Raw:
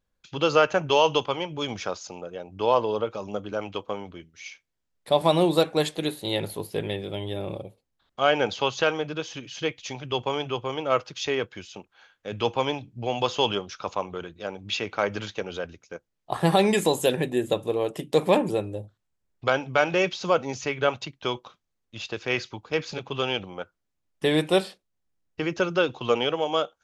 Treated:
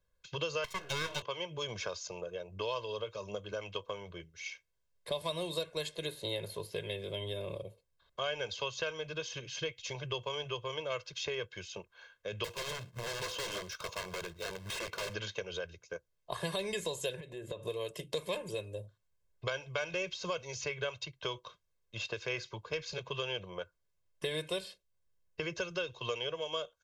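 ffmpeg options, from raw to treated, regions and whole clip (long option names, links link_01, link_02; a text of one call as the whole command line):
ffmpeg -i in.wav -filter_complex "[0:a]asettb=1/sr,asplit=3[link_01][link_02][link_03];[link_01]atrim=end=0.644[link_04];[link_02]atrim=start=0.64:end=1.22,asetpts=PTS-STARTPTS,afade=type=in:duration=0.004:curve=qsin,afade=type=out:start_time=0.576:duration=0.004:curve=qsin,bass=frequency=250:gain=2,treble=frequency=4000:gain=4,bandreject=frequency=117.2:width_type=h:width=4,bandreject=frequency=234.4:width_type=h:width=4,bandreject=frequency=351.6:width_type=h:width=4,bandreject=frequency=468.8:width_type=h:width=4,bandreject=frequency=586:width_type=h:width=4,bandreject=frequency=703.2:width_type=h:width=4,bandreject=frequency=820.4:width_type=h:width=4,bandreject=frequency=937.6:width_type=h:width=4,bandreject=frequency=1054.8:width_type=h:width=4,bandreject=frequency=1172:width_type=h:width=4,bandreject=frequency=1289.2:width_type=h:width=4,bandreject=frequency=1406.4:width_type=h:width=4,bandreject=frequency=1523.6:width_type=h:width=4,bandreject=frequency=1640.8:width_type=h:width=4,bandreject=frequency=1758:width_type=h:width=4,bandreject=frequency=1875.2:width_type=h:width=4,bandreject=frequency=1992.4:width_type=h:width=4,bandreject=frequency=2109.6:width_type=h:width=4,bandreject=frequency=2226.8:width_type=h:width=4,bandreject=frequency=2344:width_type=h:width=4,bandreject=frequency=2461.2:width_type=h:width=4,bandreject=frequency=2578.4:width_type=h:width=4,bandreject=frequency=2695.6:width_type=h:width=4,bandreject=frequency=2812.8:width_type=h:width=4,bandreject=frequency=2930:width_type=h:width=4,bandreject=frequency=3047.2:width_type=h:width=4,bandreject=frequency=3164.4:width_type=h:width=4,bandreject=frequency=3281.6:width_type=h:width=4,bandreject=frequency=3398.8:width_type=h:width=4,aeval=exprs='abs(val(0))':channel_layout=same[link_05];[link_03]atrim=start=1.216[link_06];[link_04][link_05]acrossfade=duration=0.004:curve1=hsin:curve2=qsin[link_07];[link_07][link_06]acrossfade=duration=0.004:curve1=qsin:curve2=hsin,asettb=1/sr,asplit=3[link_08][link_09][link_10];[link_08]atrim=end=12.444[link_11];[link_09]atrim=start=12.44:end=15.14,asetpts=PTS-STARTPTS,afade=type=in:duration=0.004:curve=qsin,afade=type=out:start_time=2.696:duration=0.004:curve=qsin,acrusher=bits=2:mode=log:mix=0:aa=0.000001,aeval=exprs='(mod(23.7*val(0)+1,2)-1)/23.7':channel_layout=same[link_12];[link_10]atrim=start=15.136[link_13];[link_11][link_12]acrossfade=duration=0.004:curve1=hsin:curve2=qsin[link_14];[link_14][link_13]acrossfade=duration=0.004:curve1=qsin:curve2=hsin,asettb=1/sr,asplit=3[link_15][link_16][link_17];[link_15]atrim=end=17.204[link_18];[link_16]atrim=start=17.2:end=17.65,asetpts=PTS-STARTPTS,afade=type=in:duration=0.004:curve=qsin,afade=type=out:start_time=0.446:duration=0.004:curve=qsin,highshelf=frequency=7700:gain=-12,acompressor=threshold=-33dB:ratio=6:attack=3.2:release=140:knee=1:detection=peak[link_19];[link_17]atrim=start=17.646[link_20];[link_18][link_19]acrossfade=duration=0.004:curve1=hsin:curve2=qsin[link_21];[link_21][link_20]acrossfade=duration=0.004:curve1=qsin:curve2=hsin,aecho=1:1:1.9:0.86,acrossover=split=93|2200|7900[link_22][link_23][link_24][link_25];[link_22]acompressor=threshold=-53dB:ratio=4[link_26];[link_23]acompressor=threshold=-34dB:ratio=4[link_27];[link_24]acompressor=threshold=-36dB:ratio=4[link_28];[link_25]acompressor=threshold=-53dB:ratio=4[link_29];[link_26][link_27][link_28][link_29]amix=inputs=4:normalize=0,volume=-4dB" out.wav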